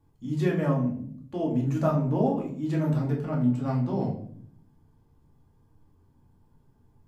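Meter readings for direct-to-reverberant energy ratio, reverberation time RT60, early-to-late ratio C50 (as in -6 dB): -3.5 dB, 0.60 s, 7.0 dB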